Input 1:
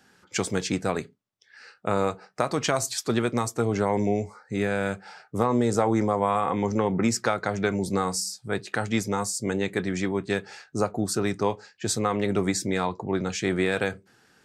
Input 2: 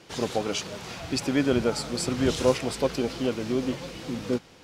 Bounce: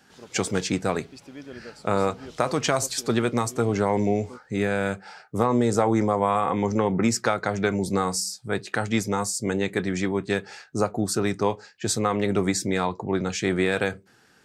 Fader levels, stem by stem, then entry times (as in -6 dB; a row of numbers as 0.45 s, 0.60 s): +1.5 dB, -17.5 dB; 0.00 s, 0.00 s